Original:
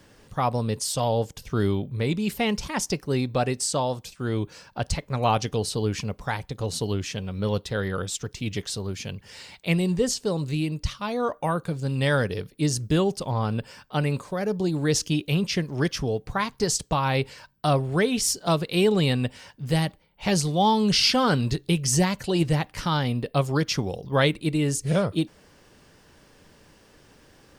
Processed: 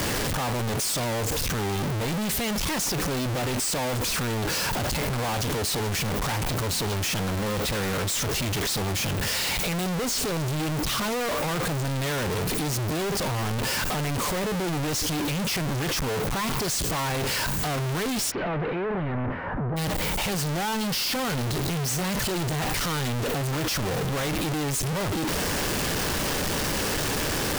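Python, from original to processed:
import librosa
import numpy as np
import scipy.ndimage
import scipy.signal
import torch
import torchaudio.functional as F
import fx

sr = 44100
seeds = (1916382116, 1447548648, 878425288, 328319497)

y = np.sign(x) * np.sqrt(np.mean(np.square(x)))
y = fx.lowpass(y, sr, hz=fx.line((18.3, 2600.0), (19.76, 1400.0)), slope=24, at=(18.3, 19.76), fade=0.02)
y = F.gain(torch.from_numpy(y), -1.0).numpy()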